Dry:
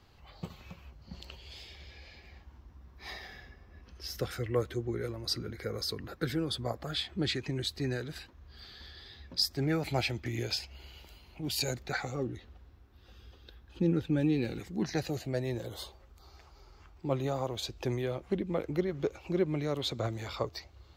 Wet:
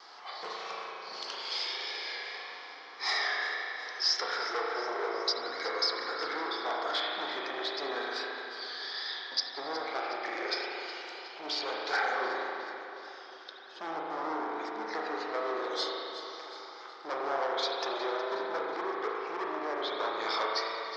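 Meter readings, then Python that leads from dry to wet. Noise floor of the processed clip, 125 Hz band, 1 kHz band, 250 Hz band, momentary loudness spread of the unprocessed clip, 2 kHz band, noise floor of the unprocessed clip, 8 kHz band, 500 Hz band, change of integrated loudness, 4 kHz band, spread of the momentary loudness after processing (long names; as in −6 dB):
−48 dBFS, below −30 dB, +11.0 dB, −9.5 dB, 19 LU, +8.5 dB, −58 dBFS, −3.0 dB, 0.0 dB, +0.5 dB, +4.0 dB, 12 LU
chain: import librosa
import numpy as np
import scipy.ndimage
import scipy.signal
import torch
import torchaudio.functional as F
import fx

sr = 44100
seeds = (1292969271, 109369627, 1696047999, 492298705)

p1 = fx.env_lowpass_down(x, sr, base_hz=880.0, full_db=-26.5)
p2 = fx.rider(p1, sr, range_db=10, speed_s=0.5)
p3 = p1 + (p2 * librosa.db_to_amplitude(-1.0))
p4 = np.clip(p3, -10.0 ** (-28.5 / 20.0), 10.0 ** (-28.5 / 20.0))
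p5 = fx.rev_spring(p4, sr, rt60_s=2.8, pass_ms=(36,), chirp_ms=60, drr_db=-3.0)
p6 = fx.vibrato(p5, sr, rate_hz=1.7, depth_cents=33.0)
p7 = fx.cabinet(p6, sr, low_hz=490.0, low_slope=24, high_hz=5700.0, hz=(570.0, 1200.0, 2700.0, 5300.0), db=(-7, 3, -10, 9))
p8 = p7 + fx.echo_feedback(p7, sr, ms=366, feedback_pct=55, wet_db=-14.0, dry=0)
y = p8 * librosa.db_to_amplitude(2.0)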